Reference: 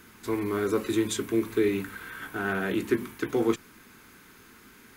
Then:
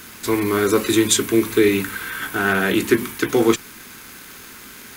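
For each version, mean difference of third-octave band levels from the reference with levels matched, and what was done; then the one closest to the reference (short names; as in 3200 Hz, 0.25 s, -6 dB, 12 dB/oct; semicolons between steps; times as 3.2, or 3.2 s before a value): 3.5 dB: high shelf 2200 Hz +8.5 dB; crackle 250/s -38 dBFS; gain +8.5 dB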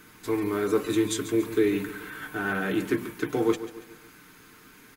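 1.5 dB: comb 6.6 ms, depth 46%; feedback echo 0.141 s, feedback 43%, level -13 dB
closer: second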